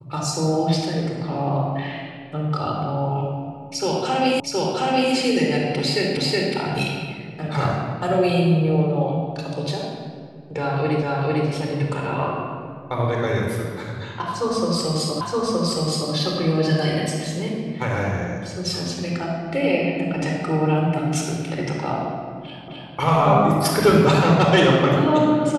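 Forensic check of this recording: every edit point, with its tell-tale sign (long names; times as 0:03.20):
0:04.40: the same again, the last 0.72 s
0:06.17: the same again, the last 0.37 s
0:11.03: the same again, the last 0.45 s
0:15.21: the same again, the last 0.92 s
0:22.68: the same again, the last 0.26 s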